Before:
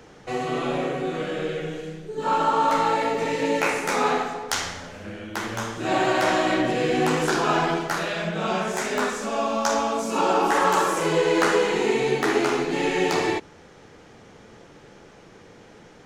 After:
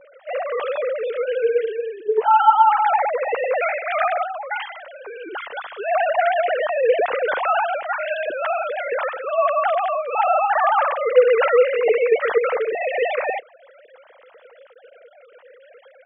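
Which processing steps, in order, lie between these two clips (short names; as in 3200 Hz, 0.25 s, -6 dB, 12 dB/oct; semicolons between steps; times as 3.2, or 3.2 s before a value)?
sine-wave speech; gain +3.5 dB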